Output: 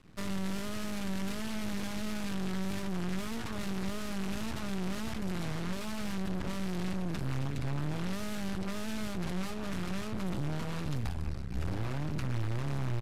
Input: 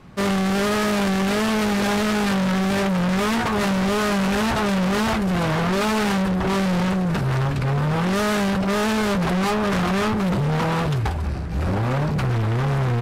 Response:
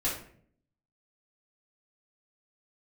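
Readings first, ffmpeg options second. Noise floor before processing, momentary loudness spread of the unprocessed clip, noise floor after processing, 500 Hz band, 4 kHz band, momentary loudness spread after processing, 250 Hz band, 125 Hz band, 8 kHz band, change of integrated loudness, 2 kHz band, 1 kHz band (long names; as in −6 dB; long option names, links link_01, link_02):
−23 dBFS, 2 LU, −36 dBFS, −18.5 dB, −15.0 dB, 2 LU, −14.5 dB, −13.5 dB, −13.0 dB, −15.5 dB, −17.5 dB, −19.5 dB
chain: -filter_complex "[0:a]equalizer=frequency=690:width=0.41:gain=-9,aeval=exprs='max(val(0),0)':channel_layout=same,acrossover=split=320[link_01][link_02];[link_02]acompressor=threshold=-33dB:ratio=6[link_03];[link_01][link_03]amix=inputs=2:normalize=0,aresample=32000,aresample=44100,volume=-5dB"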